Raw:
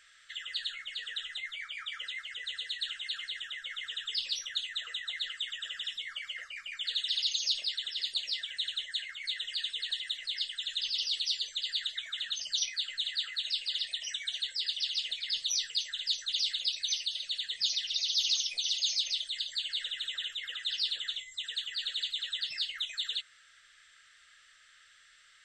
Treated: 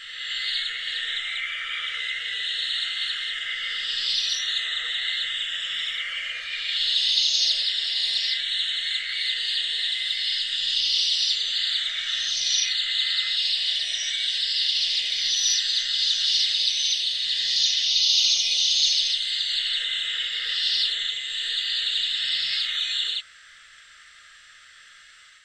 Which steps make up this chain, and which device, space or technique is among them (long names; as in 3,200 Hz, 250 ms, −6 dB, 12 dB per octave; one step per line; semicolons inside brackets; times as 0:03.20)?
reverse reverb (reversed playback; convolution reverb RT60 2.4 s, pre-delay 28 ms, DRR −5 dB; reversed playback)
level +5 dB